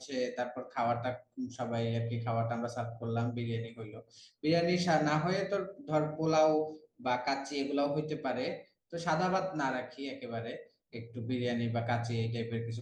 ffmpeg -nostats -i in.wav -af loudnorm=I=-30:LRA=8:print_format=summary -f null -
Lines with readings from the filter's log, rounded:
Input Integrated:    -34.0 LUFS
Input True Peak:     -16.3 dBTP
Input LRA:             4.6 LU
Input Threshold:     -44.4 LUFS